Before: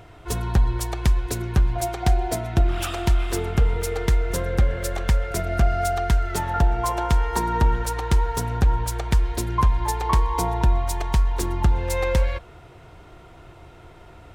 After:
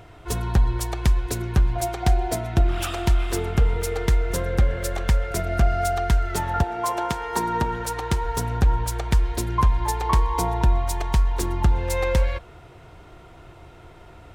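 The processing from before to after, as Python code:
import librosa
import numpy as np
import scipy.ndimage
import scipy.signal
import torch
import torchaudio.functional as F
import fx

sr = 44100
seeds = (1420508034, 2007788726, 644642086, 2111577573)

y = fx.highpass(x, sr, hz=fx.line((6.62, 240.0), (8.24, 69.0)), slope=12, at=(6.62, 8.24), fade=0.02)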